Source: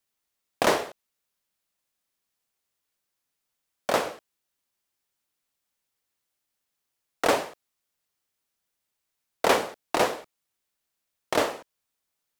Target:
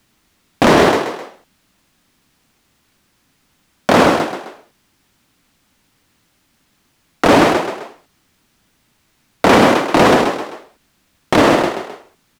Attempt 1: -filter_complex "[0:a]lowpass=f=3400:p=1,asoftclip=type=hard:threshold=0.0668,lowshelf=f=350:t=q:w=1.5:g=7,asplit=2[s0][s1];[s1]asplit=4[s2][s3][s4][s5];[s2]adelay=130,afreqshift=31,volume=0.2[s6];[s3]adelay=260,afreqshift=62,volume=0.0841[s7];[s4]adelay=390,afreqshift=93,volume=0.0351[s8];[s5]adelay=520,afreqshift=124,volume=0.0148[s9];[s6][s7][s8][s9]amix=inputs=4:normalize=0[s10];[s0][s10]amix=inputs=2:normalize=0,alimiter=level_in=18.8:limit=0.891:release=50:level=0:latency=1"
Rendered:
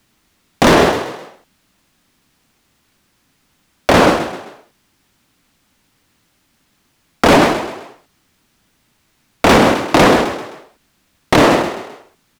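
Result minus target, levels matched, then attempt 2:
hard clipper: distortion +18 dB
-filter_complex "[0:a]lowpass=f=3400:p=1,asoftclip=type=hard:threshold=0.251,lowshelf=f=350:t=q:w=1.5:g=7,asplit=2[s0][s1];[s1]asplit=4[s2][s3][s4][s5];[s2]adelay=130,afreqshift=31,volume=0.2[s6];[s3]adelay=260,afreqshift=62,volume=0.0841[s7];[s4]adelay=390,afreqshift=93,volume=0.0351[s8];[s5]adelay=520,afreqshift=124,volume=0.0148[s9];[s6][s7][s8][s9]amix=inputs=4:normalize=0[s10];[s0][s10]amix=inputs=2:normalize=0,alimiter=level_in=18.8:limit=0.891:release=50:level=0:latency=1"

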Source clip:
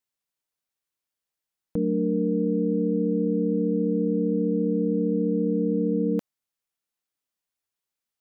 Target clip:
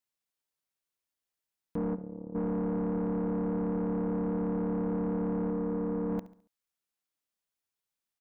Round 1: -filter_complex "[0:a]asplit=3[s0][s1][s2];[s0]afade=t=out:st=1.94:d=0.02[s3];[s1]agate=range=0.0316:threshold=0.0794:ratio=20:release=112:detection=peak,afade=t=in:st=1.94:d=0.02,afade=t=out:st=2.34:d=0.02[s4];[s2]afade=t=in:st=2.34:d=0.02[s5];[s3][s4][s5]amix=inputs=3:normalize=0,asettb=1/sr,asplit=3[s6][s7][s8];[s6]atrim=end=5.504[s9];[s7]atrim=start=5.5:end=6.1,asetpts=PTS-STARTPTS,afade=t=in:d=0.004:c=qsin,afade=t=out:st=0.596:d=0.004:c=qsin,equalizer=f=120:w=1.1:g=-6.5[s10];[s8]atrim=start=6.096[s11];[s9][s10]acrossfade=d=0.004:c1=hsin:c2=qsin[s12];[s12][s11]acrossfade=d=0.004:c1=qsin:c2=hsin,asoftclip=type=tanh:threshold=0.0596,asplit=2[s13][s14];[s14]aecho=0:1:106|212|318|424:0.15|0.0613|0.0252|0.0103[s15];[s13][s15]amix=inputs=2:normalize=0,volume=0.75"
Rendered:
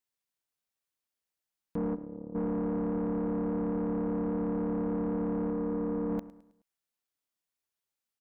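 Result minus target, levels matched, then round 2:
echo 36 ms late
-filter_complex "[0:a]asplit=3[s0][s1][s2];[s0]afade=t=out:st=1.94:d=0.02[s3];[s1]agate=range=0.0316:threshold=0.0794:ratio=20:release=112:detection=peak,afade=t=in:st=1.94:d=0.02,afade=t=out:st=2.34:d=0.02[s4];[s2]afade=t=in:st=2.34:d=0.02[s5];[s3][s4][s5]amix=inputs=3:normalize=0,asettb=1/sr,asplit=3[s6][s7][s8];[s6]atrim=end=5.504[s9];[s7]atrim=start=5.5:end=6.1,asetpts=PTS-STARTPTS,afade=t=in:d=0.004:c=qsin,afade=t=out:st=0.596:d=0.004:c=qsin,equalizer=f=120:w=1.1:g=-6.5[s10];[s8]atrim=start=6.096[s11];[s9][s10]acrossfade=d=0.004:c1=hsin:c2=qsin[s12];[s12][s11]acrossfade=d=0.004:c1=qsin:c2=hsin,asoftclip=type=tanh:threshold=0.0596,asplit=2[s13][s14];[s14]aecho=0:1:70|140|210|280:0.15|0.0613|0.0252|0.0103[s15];[s13][s15]amix=inputs=2:normalize=0,volume=0.75"

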